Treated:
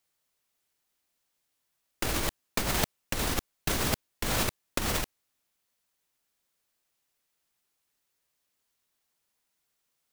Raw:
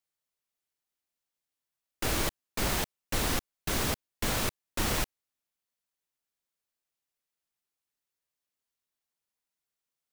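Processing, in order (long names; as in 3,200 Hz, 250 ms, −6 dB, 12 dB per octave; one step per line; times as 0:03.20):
compressor whose output falls as the input rises −32 dBFS, ratio −0.5
level +5 dB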